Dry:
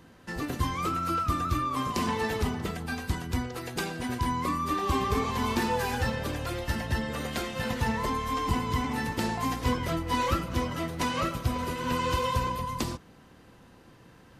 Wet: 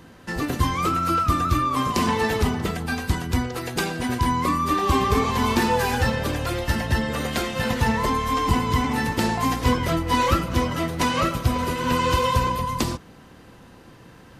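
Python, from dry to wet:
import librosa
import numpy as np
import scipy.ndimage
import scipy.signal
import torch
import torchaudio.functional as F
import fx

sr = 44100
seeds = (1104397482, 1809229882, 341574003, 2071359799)

y = x * 10.0 ** (7.0 / 20.0)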